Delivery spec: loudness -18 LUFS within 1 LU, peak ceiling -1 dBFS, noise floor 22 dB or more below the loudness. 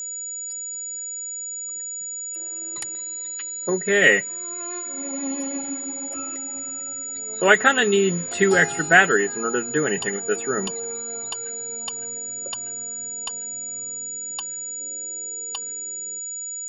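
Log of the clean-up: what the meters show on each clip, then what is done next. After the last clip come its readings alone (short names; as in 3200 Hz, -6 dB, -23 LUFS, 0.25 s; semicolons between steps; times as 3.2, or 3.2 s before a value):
steady tone 6900 Hz; tone level -29 dBFS; loudness -23.5 LUFS; peak -2.0 dBFS; loudness target -18.0 LUFS
-> notch 6900 Hz, Q 30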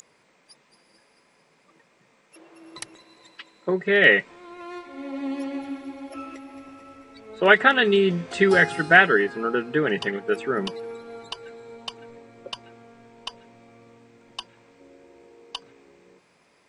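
steady tone none; loudness -20.5 LUFS; peak -2.5 dBFS; loudness target -18.0 LUFS
-> gain +2.5 dB; limiter -1 dBFS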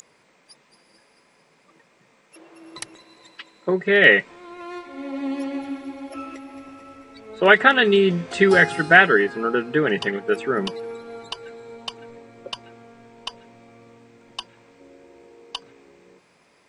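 loudness -18.0 LUFS; peak -1.0 dBFS; noise floor -60 dBFS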